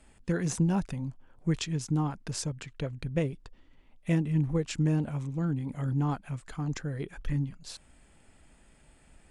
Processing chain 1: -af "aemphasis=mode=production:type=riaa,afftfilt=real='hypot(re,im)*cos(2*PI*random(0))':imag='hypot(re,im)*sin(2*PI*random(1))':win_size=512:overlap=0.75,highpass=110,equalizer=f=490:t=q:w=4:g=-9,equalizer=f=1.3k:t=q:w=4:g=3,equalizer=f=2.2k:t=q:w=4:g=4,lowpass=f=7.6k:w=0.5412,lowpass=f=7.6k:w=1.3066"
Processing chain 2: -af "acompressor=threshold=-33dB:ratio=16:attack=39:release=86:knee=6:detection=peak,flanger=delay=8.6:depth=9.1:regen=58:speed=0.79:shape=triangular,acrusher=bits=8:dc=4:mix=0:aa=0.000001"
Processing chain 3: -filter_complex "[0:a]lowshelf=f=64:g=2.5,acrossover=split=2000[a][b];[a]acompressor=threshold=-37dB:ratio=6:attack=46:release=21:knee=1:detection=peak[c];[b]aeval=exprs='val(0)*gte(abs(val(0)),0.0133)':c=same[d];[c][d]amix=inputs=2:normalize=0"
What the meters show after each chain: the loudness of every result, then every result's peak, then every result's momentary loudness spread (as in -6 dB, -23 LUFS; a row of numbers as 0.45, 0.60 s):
-41.0, -40.5, -36.0 LUFS; -17.0, -24.0, -18.0 dBFS; 14, 7, 6 LU